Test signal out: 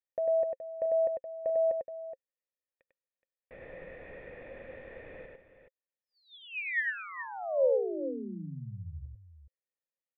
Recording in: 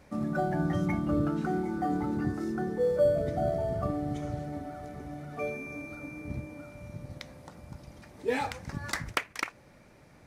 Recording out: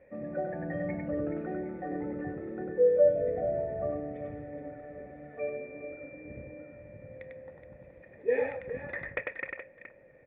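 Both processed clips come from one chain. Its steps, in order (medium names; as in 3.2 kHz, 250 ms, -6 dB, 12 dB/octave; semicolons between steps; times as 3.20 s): cascade formant filter e; multi-tap echo 98/422 ms -3/-11 dB; trim +8.5 dB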